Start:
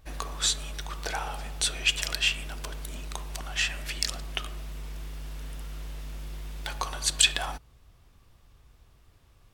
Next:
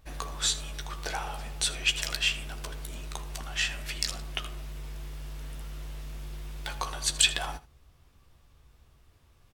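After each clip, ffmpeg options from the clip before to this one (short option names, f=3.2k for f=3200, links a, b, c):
-af "aecho=1:1:14|80:0.355|0.141,volume=-2dB"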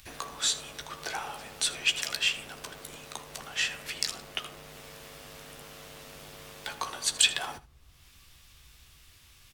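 -filter_complex "[0:a]acrossover=split=290|500|1900[a][b][c][d];[a]aeval=exprs='(mod(150*val(0)+1,2)-1)/150':c=same[e];[b]acrusher=samples=38:mix=1:aa=0.000001[f];[d]acompressor=mode=upward:threshold=-45dB:ratio=2.5[g];[e][f][c][g]amix=inputs=4:normalize=0"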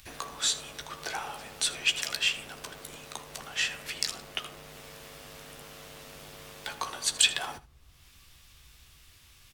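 -af anull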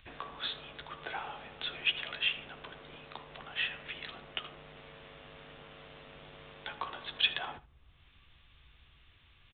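-af "aresample=8000,aresample=44100,volume=-3.5dB"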